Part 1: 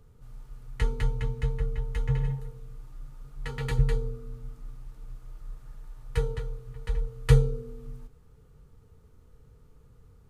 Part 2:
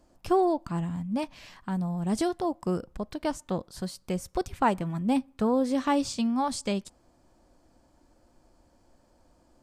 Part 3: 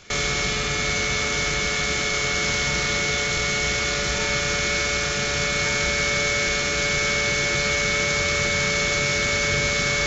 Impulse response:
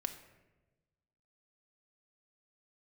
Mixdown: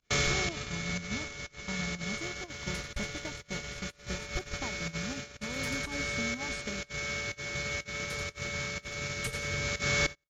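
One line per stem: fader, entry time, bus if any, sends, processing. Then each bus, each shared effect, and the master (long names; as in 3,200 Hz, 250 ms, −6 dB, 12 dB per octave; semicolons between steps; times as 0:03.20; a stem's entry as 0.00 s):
−13.5 dB, 1.95 s, no send, echo send −7 dB, spectral tilt +4.5 dB per octave; tape wow and flutter 150 cents
−8.0 dB, 0.00 s, no send, no echo send, bass and treble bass +5 dB, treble −4 dB; downward compressor 8 to 1, threshold −30 dBFS, peak gain reduction 12 dB
−1.5 dB, 0.00 s, no send, echo send −22 dB, fake sidechain pumping 123 BPM, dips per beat 1, −21 dB, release 97 ms; high-pass filter 61 Hz 24 dB per octave; automatic ducking −11 dB, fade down 0.75 s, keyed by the second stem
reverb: not used
echo: repeating echo 87 ms, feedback 25%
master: hard clipping −18.5 dBFS, distortion −44 dB; low-shelf EQ 110 Hz +9 dB; noise gate −33 dBFS, range −25 dB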